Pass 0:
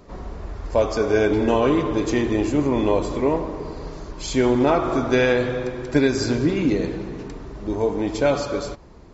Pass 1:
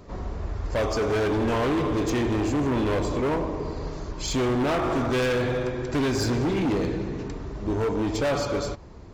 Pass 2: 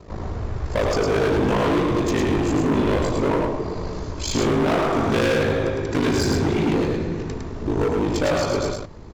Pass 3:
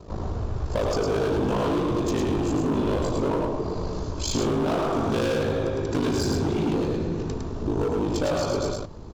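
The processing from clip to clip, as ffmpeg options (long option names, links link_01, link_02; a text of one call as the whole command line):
ffmpeg -i in.wav -af "equalizer=frequency=93:width_type=o:width=0.85:gain=6,volume=21.5dB,asoftclip=hard,volume=-21.5dB" out.wav
ffmpeg -i in.wav -af "aeval=exprs='val(0)*sin(2*PI*26*n/s)':channel_layout=same,aecho=1:1:107:0.668,volume=5.5dB" out.wav
ffmpeg -i in.wav -af "equalizer=frequency=2000:width_type=o:width=0.63:gain=-9,acompressor=threshold=-23dB:ratio=2.5" out.wav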